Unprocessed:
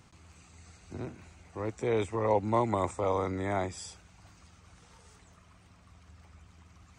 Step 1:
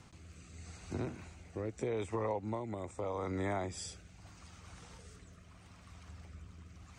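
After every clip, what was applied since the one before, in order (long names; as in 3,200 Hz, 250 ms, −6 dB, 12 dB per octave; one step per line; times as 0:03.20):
downward compressor 10 to 1, threshold −36 dBFS, peak gain reduction 15 dB
rotating-speaker cabinet horn 0.8 Hz
level +4.5 dB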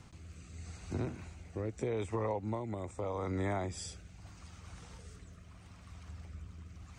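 low-shelf EQ 140 Hz +5.5 dB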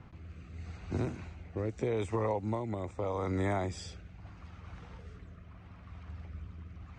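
low-pass that shuts in the quiet parts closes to 1,900 Hz, open at −30 dBFS
level +3 dB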